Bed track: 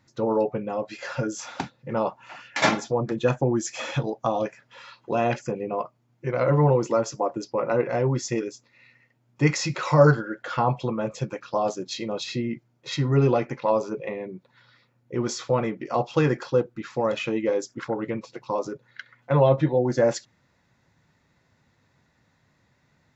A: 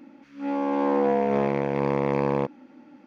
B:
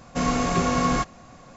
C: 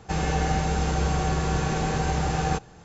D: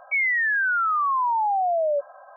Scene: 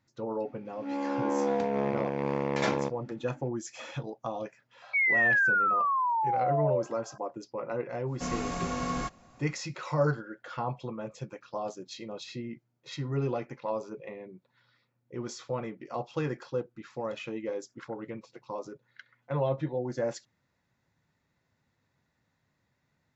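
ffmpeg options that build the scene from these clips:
-filter_complex "[0:a]volume=-10.5dB[a];[4:a]equalizer=f=1.7k:w=1.5:g=5[b];[1:a]atrim=end=3.06,asetpts=PTS-STARTPTS,volume=-6dB,afade=t=in:d=0.004:c=hsin,afade=t=out:st=3.056:d=0.004:c=hsin,adelay=430[c];[b]atrim=end=2.36,asetpts=PTS-STARTPTS,volume=-6.5dB,afade=t=in:d=0.004:c=hsin,afade=t=out:st=2.356:d=0.004:c=hsin,adelay=4820[d];[2:a]atrim=end=1.56,asetpts=PTS-STARTPTS,volume=-10dB,afade=t=in:d=0.1,afade=t=out:st=1.46:d=0.1,adelay=8050[e];[a][c][d][e]amix=inputs=4:normalize=0"

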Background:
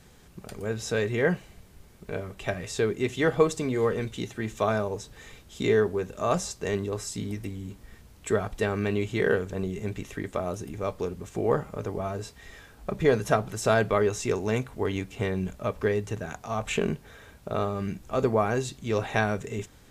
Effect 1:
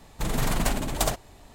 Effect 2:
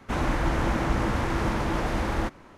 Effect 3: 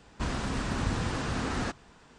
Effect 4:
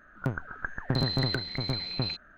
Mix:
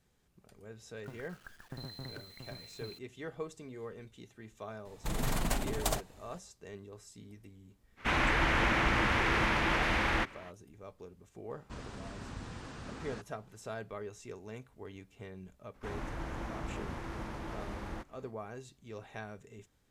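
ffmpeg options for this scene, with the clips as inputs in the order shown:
-filter_complex "[2:a]asplit=2[a][b];[0:a]volume=-19dB[c];[4:a]acrusher=bits=6:mix=0:aa=0.000001[d];[a]equalizer=f=2.4k:t=o:w=2:g=14[e];[3:a]aresample=32000,aresample=44100[f];[d]atrim=end=2.37,asetpts=PTS-STARTPTS,volume=-17.5dB,afade=t=in:d=0.004:c=hsin,afade=t=out:st=2.366:d=0.004:c=hsin,adelay=820[g];[1:a]atrim=end=1.54,asetpts=PTS-STARTPTS,volume=-7dB,afade=t=in:d=0.004:c=hsin,afade=t=out:st=1.536:d=0.004:c=hsin,adelay=213885S[h];[e]atrim=end=2.57,asetpts=PTS-STARTPTS,volume=-7dB,afade=t=in:d=0.05,afade=t=out:st=2.52:d=0.05,adelay=7960[i];[f]atrim=end=2.18,asetpts=PTS-STARTPTS,volume=-14dB,afade=t=in:d=0.004:c=hsin,afade=t=out:st=2.176:d=0.004:c=hsin,adelay=11500[j];[b]atrim=end=2.57,asetpts=PTS-STARTPTS,volume=-15dB,afade=t=in:d=0.004:c=hsin,afade=t=out:st=2.566:d=0.004:c=hsin,adelay=15740[k];[c][g][h][i][j][k]amix=inputs=6:normalize=0"

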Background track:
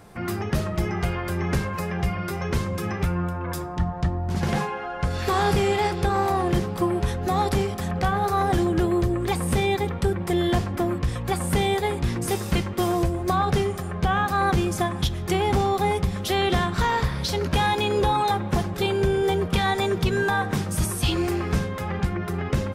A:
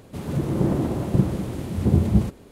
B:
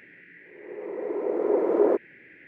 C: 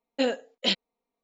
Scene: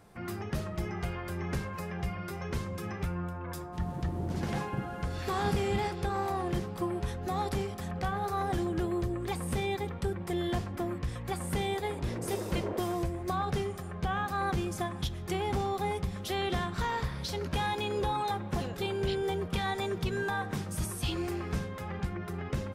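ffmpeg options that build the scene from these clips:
-filter_complex "[0:a]volume=-9.5dB[a];[1:a]agate=range=-33dB:threshold=-39dB:ratio=3:release=100:detection=peak[b];[2:a]equalizer=f=420:t=o:w=0.61:g=-7[c];[b]atrim=end=2.51,asetpts=PTS-STARTPTS,volume=-16.5dB,afade=t=in:d=0.004:c=hsin,afade=t=out:st=2.506:d=0.004:c=hsin,adelay=3590[d];[c]atrim=end=2.47,asetpts=PTS-STARTPTS,volume=-11dB,afade=t=in:d=0.004:c=hsin,afade=t=out:st=2.466:d=0.004:c=hsin,adelay=10840[e];[3:a]atrim=end=1.23,asetpts=PTS-STARTPTS,volume=-16.5dB,afade=t=in:d=0.004:c=hsin,afade=t=out:st=1.226:d=0.004:c=hsin,adelay=18410[f];[a][d][e][f]amix=inputs=4:normalize=0"

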